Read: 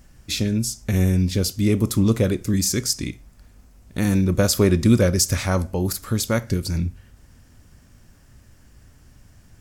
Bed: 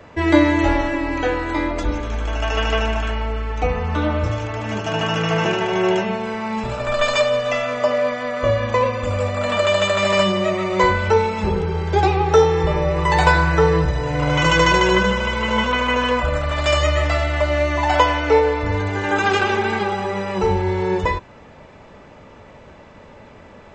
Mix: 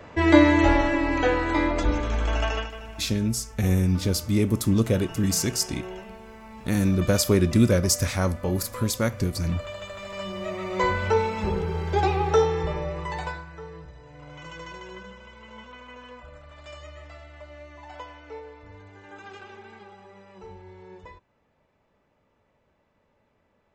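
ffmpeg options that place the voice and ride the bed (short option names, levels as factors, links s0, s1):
-filter_complex "[0:a]adelay=2700,volume=0.708[s0];[1:a]volume=4.22,afade=t=out:st=2.37:d=0.34:silence=0.11885,afade=t=in:st=10.14:d=0.92:silence=0.199526,afade=t=out:st=12.28:d=1.17:silence=0.105925[s1];[s0][s1]amix=inputs=2:normalize=0"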